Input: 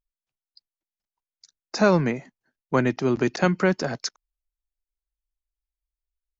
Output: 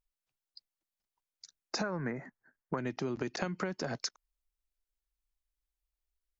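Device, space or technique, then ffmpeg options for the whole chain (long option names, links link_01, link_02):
serial compression, peaks first: -filter_complex "[0:a]asettb=1/sr,asplit=3[link_01][link_02][link_03];[link_01]atrim=end=1.834[link_04];[link_02]atrim=start=1.83:end=2.78,asetpts=PTS-STARTPTS,afade=type=in:duration=0.004:curve=qsin,afade=type=out:start_time=0.946:duration=0.004:curve=qsin,highshelf=frequency=2300:width_type=q:width=3:gain=-10.5[link_05];[link_03]atrim=start=2.776[link_06];[link_04][link_05]acrossfade=duration=0.004:curve1=hsin:curve2=qsin[link_07];[link_07][link_06]acrossfade=duration=0.004:curve1=qsin:curve2=hsin,acompressor=threshold=-25dB:ratio=6,acompressor=threshold=-34dB:ratio=2.5"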